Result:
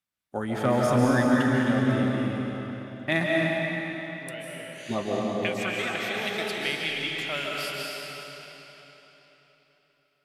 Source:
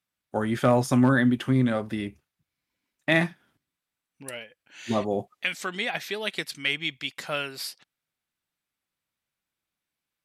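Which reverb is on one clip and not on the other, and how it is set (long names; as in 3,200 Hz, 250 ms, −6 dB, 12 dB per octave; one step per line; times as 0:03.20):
comb and all-pass reverb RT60 3.9 s, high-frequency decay 0.9×, pre-delay 110 ms, DRR −3.5 dB
level −4 dB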